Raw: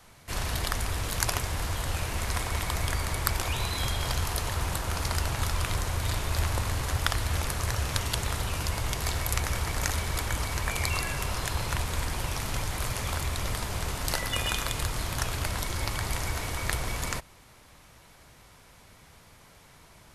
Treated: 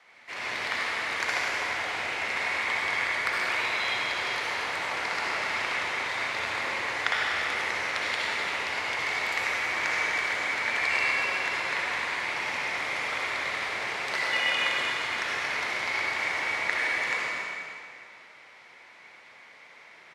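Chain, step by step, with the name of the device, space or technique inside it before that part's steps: station announcement (BPF 430–4200 Hz; bell 2100 Hz +11.5 dB 0.49 oct; loudspeakers at several distances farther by 35 m -11 dB, 86 m -10 dB; reverb RT60 2.2 s, pre-delay 55 ms, DRR -4.5 dB); gain -4 dB

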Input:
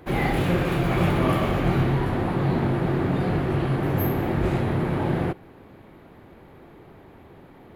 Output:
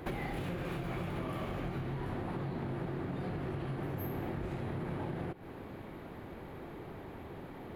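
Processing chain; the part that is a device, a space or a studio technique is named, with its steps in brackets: serial compression, peaks first (compressor, threshold -30 dBFS, peak gain reduction 12.5 dB; compressor 3:1, threshold -38 dBFS, peak gain reduction 8 dB); gain +1.5 dB

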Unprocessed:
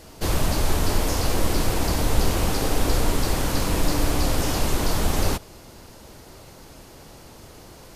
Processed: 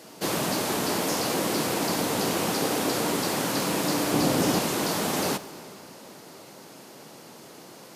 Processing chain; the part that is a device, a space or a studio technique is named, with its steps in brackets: HPF 160 Hz 24 dB/oct; 4.12–4.59 low shelf 420 Hz +8 dB; saturated reverb return (on a send at -12.5 dB: reverb RT60 2.8 s, pre-delay 66 ms + soft clip -24 dBFS, distortion -13 dB)

